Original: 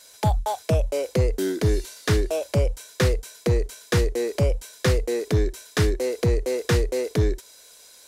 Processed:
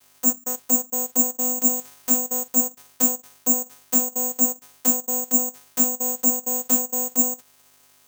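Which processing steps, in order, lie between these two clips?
running median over 5 samples
high shelf with overshoot 2,200 Hz +7.5 dB, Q 3
channel vocoder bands 4, saw 250 Hz
in parallel at −4 dB: log-companded quantiser 4 bits
on the sum: Butterworth band-reject 2,700 Hz, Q 1.2
bad sample-rate conversion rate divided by 6×, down none, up zero stuff
level −10 dB

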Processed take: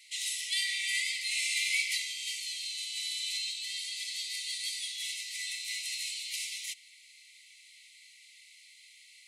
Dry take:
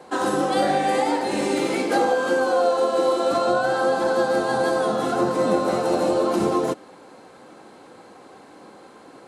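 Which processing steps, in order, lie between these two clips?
linear-phase brick-wall high-pass 1,900 Hz
level +3 dB

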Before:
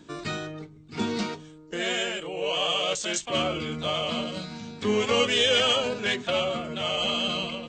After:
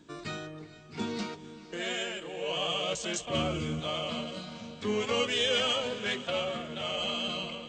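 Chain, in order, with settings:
0:02.49–0:03.80: parametric band 80 Hz +10.5 dB 3 octaves
feedback delay with all-pass diffusion 463 ms, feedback 41%, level −15 dB
level −6 dB

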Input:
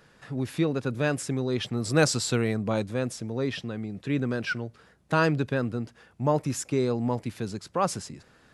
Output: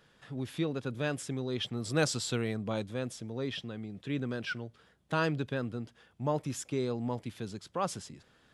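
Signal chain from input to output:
parametric band 3,300 Hz +8 dB 0.32 octaves
level −7 dB

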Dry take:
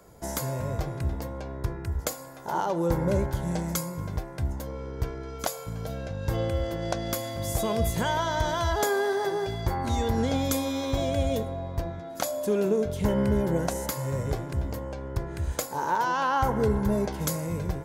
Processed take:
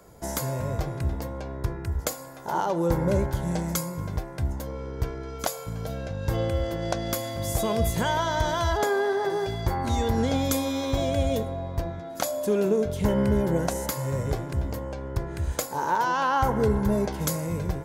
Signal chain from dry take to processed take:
0:08.77–0:09.30: high-shelf EQ 5,000 Hz −9.5 dB
level +1.5 dB

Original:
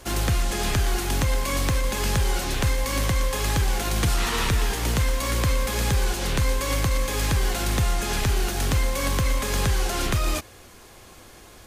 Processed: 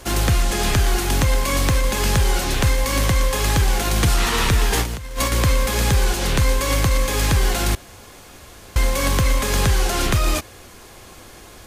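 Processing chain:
0:04.70–0:05.32: compressor whose output falls as the input rises −27 dBFS, ratio −0.5
0:07.75–0:08.76: fill with room tone
level +5 dB

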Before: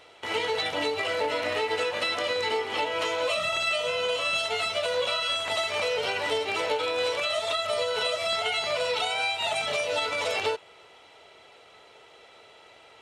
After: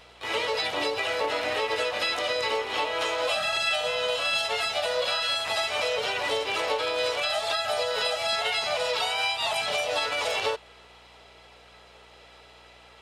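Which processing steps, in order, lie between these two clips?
pitch-shifted copies added +4 semitones −6 dB
low-shelf EQ 360 Hz −4 dB
mains hum 60 Hz, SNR 33 dB

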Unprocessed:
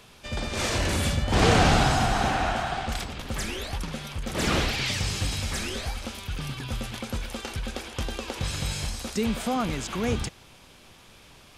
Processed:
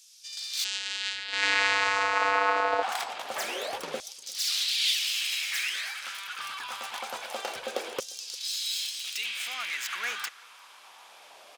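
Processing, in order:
stylus tracing distortion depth 0.1 ms
auto-filter high-pass saw down 0.25 Hz 440–6,100 Hz
0:00.64–0:02.83: channel vocoder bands 8, square 98.5 Hz
slap from a distant wall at 60 metres, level −27 dB

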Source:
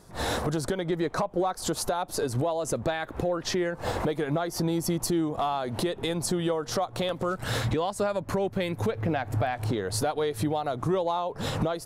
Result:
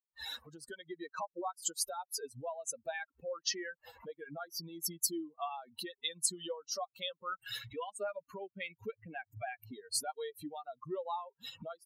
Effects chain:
spectral dynamics exaggerated over time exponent 3
high-pass filter 600 Hz 6 dB per octave
high-shelf EQ 2,500 Hz +9 dB
level −3.5 dB

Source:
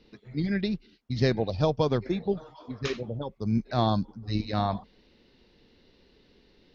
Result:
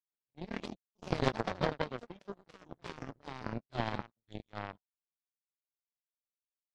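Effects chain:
hearing-aid frequency compression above 2,600 Hz 1.5 to 1
delay with pitch and tempo change per echo 99 ms, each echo +3 semitones, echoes 3
power curve on the samples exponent 3
level +1 dB

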